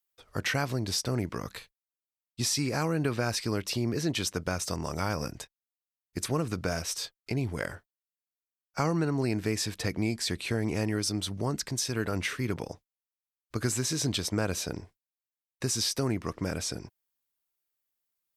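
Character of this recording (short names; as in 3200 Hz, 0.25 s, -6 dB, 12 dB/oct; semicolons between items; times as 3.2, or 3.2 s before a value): noise floor -94 dBFS; spectral tilt -4.0 dB/oct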